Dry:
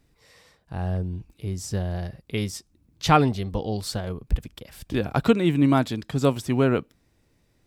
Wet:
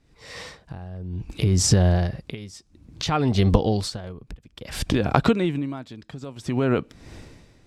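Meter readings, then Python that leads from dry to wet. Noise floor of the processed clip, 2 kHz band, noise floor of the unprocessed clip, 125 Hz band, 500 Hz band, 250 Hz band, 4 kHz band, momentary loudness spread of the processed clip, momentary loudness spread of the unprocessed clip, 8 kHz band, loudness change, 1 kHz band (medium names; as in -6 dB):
-58 dBFS, -0.5 dB, -66 dBFS, +3.0 dB, 0.0 dB, -0.5 dB, +3.5 dB, 20 LU, 14 LU, +9.0 dB, +2.0 dB, -2.5 dB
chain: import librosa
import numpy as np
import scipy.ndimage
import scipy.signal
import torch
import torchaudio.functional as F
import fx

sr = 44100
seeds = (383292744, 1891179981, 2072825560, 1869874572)

y = fx.recorder_agc(x, sr, target_db=-8.5, rise_db_per_s=71.0, max_gain_db=30)
y = scipy.signal.sosfilt(scipy.signal.butter(2, 7700.0, 'lowpass', fs=sr, output='sos'), y)
y = y * 10.0 ** (-21 * (0.5 - 0.5 * np.cos(2.0 * np.pi * 0.58 * np.arange(len(y)) / sr)) / 20.0)
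y = F.gain(torch.from_numpy(y), -1.0).numpy()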